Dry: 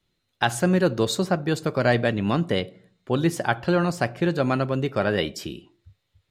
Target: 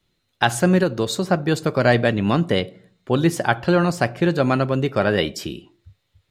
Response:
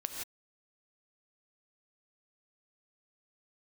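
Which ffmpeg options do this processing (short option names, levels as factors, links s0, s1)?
-filter_complex "[0:a]asettb=1/sr,asplit=3[s0][s1][s2];[s0]atrim=end=0.834[s3];[s1]atrim=start=0.83:end=1.29,asetpts=PTS-STARTPTS,afade=t=in:d=0.004:c=qsin,afade=t=out:st=0.456:d=0.004:c=qsin,acompressor=threshold=0.0398:ratio=1.5[s4];[s2]atrim=start=1.286[s5];[s3][s4]acrossfade=d=0.004:c1=hsin:c2=qsin[s6];[s6][s5]acrossfade=d=0.004:c1=qsin:c2=hsin,volume=1.58"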